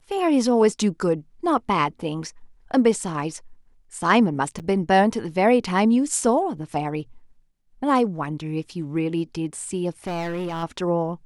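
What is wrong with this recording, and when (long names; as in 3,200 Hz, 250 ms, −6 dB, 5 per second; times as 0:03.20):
0:04.59–0:04.60: drop-out 7.9 ms
0:10.06–0:10.64: clipping −24.5 dBFS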